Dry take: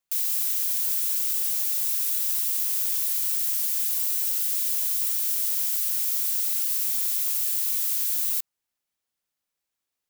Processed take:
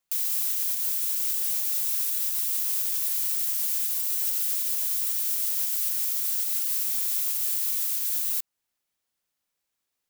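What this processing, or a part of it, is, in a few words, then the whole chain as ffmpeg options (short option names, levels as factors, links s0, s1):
limiter into clipper: -af "alimiter=limit=0.119:level=0:latency=1:release=191,asoftclip=type=hard:threshold=0.0794,volume=1.33"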